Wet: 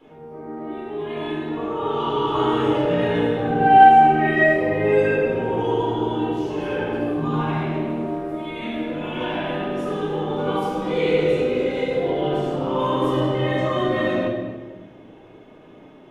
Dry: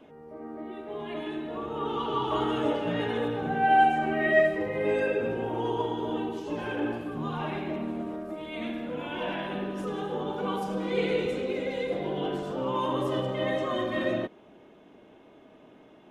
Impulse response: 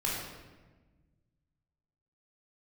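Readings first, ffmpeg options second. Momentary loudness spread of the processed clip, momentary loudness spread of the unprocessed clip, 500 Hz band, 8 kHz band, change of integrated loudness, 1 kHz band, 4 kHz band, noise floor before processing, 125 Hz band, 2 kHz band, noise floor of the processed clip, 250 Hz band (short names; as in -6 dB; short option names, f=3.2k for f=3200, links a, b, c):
12 LU, 12 LU, +7.5 dB, n/a, +8.5 dB, +10.5 dB, +6.0 dB, -54 dBFS, +10.5 dB, +6.5 dB, -46 dBFS, +8.0 dB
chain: -filter_complex "[1:a]atrim=start_sample=2205[a];[0:a][a]afir=irnorm=-1:irlink=0"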